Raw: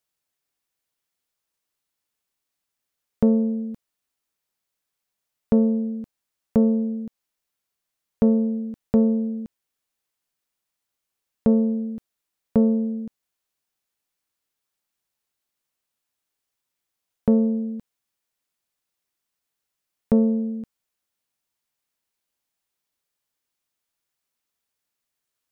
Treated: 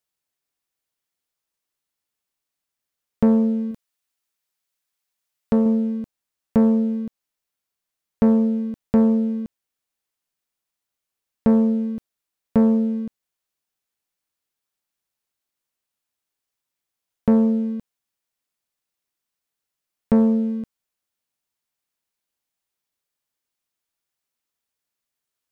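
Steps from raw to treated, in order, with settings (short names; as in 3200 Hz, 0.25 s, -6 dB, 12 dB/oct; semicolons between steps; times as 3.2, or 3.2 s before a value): 3.71–5.66 tilt shelf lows -3.5 dB, about 890 Hz; sample leveller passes 1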